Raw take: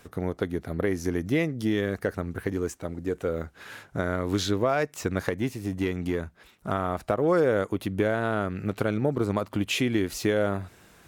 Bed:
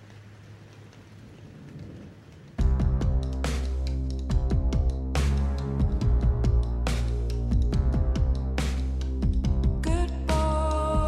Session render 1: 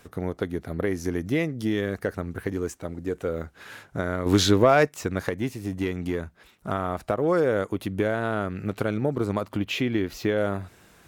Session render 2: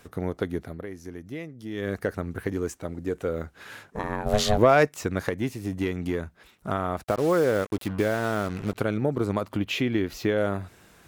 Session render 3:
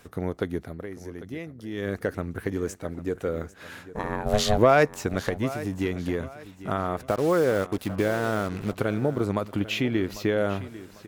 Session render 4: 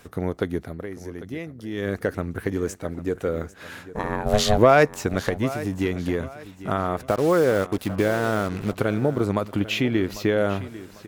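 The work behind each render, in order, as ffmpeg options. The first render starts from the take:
-filter_complex "[0:a]asettb=1/sr,asplit=3[s0][s1][s2];[s0]atrim=end=4.264[s3];[s1]atrim=start=4.26:end=4.89,asetpts=PTS-STARTPTS,afade=t=in:d=0.004:c=qsin,afade=t=out:st=0.626:d=0.004:c=qsin,acontrast=86[s4];[s2]atrim=start=4.886[s5];[s3][s4]acrossfade=d=0.004:c1=hsin:c2=qsin[s6];[s6][s5]acrossfade=d=0.004:c1=qsin:c2=hsin,asettb=1/sr,asplit=3[s7][s8][s9];[s7]atrim=end=9.574[s10];[s8]atrim=start=9.57:end=10.38,asetpts=PTS-STARTPTS,afade=t=in:d=0.004:c=qsin,afade=t=out:st=0.806:d=0.004:c=qsin,equalizer=f=9100:t=o:w=0.99:g=-13.5[s11];[s9]atrim=start=10.376[s12];[s10][s11]acrossfade=d=0.004:c1=hsin:c2=qsin[s13];[s13][s12]acrossfade=d=0.004:c1=qsin:c2=hsin"
-filter_complex "[0:a]asplit=3[s0][s1][s2];[s0]afade=t=out:st=3.9:d=0.02[s3];[s1]aeval=exprs='val(0)*sin(2*PI*320*n/s)':c=same,afade=t=in:st=3.9:d=0.02,afade=t=out:st=4.57:d=0.02[s4];[s2]afade=t=in:st=4.57:d=0.02[s5];[s3][s4][s5]amix=inputs=3:normalize=0,asplit=3[s6][s7][s8];[s6]afade=t=out:st=7.02:d=0.02[s9];[s7]acrusher=bits=5:mix=0:aa=0.5,afade=t=in:st=7.02:d=0.02,afade=t=out:st=8.74:d=0.02[s10];[s8]afade=t=in:st=8.74:d=0.02[s11];[s9][s10][s11]amix=inputs=3:normalize=0,asplit=3[s12][s13][s14];[s12]atrim=end=0.88,asetpts=PTS-STARTPTS,afade=t=out:st=0.62:d=0.26:c=qua:silence=0.266073[s15];[s13]atrim=start=0.88:end=1.63,asetpts=PTS-STARTPTS,volume=0.266[s16];[s14]atrim=start=1.63,asetpts=PTS-STARTPTS,afade=t=in:d=0.26:c=qua:silence=0.266073[s17];[s15][s16][s17]concat=n=3:v=0:a=1"
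-af "aecho=1:1:797|1594|2391:0.158|0.0523|0.0173"
-af "volume=1.41"

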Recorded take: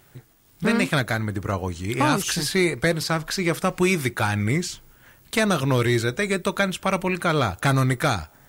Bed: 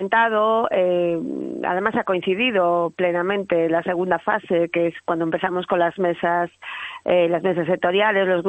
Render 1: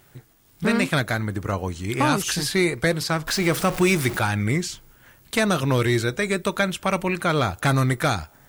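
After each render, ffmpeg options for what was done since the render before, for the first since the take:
-filter_complex "[0:a]asettb=1/sr,asplit=3[s0][s1][s2];[s0]atrim=end=3.274[s3];[s1]atrim=start=3.27:end=4.19,asetpts=PTS-STARTPTS,afade=t=in:d=0.004:c=qsin,afade=t=out:st=0.916:d=0.004:c=qsin,aeval=exprs='val(0)+0.5*0.0447*sgn(val(0))':c=same[s4];[s2]atrim=start=4.186[s5];[s3][s4]acrossfade=d=0.004:c1=hsin:c2=qsin[s6];[s6][s5]acrossfade=d=0.004:c1=qsin:c2=hsin"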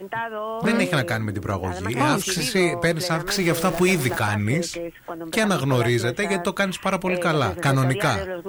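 -filter_complex "[1:a]volume=0.282[s0];[0:a][s0]amix=inputs=2:normalize=0"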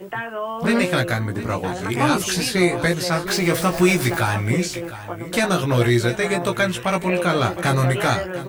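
-filter_complex "[0:a]asplit=2[s0][s1];[s1]adelay=17,volume=0.668[s2];[s0][s2]amix=inputs=2:normalize=0,aecho=1:1:708:0.188"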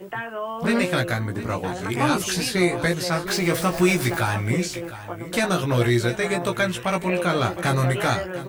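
-af "volume=0.75"

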